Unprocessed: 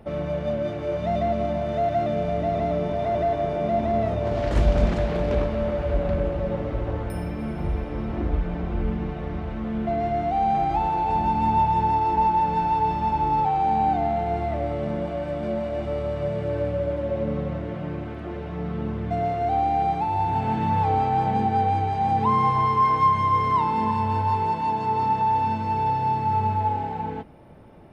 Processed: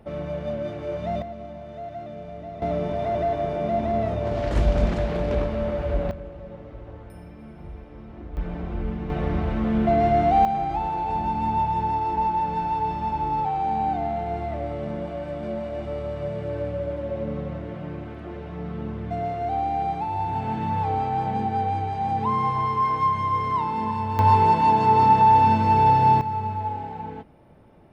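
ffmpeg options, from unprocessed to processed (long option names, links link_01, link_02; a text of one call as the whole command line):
ffmpeg -i in.wav -af "asetnsamples=nb_out_samples=441:pad=0,asendcmd='1.22 volume volume -12.5dB;2.62 volume volume -1dB;6.11 volume volume -13dB;8.37 volume volume -3dB;9.1 volume volume 5.5dB;10.45 volume volume -3dB;24.19 volume volume 6.5dB;26.21 volume volume -4.5dB',volume=-3dB" out.wav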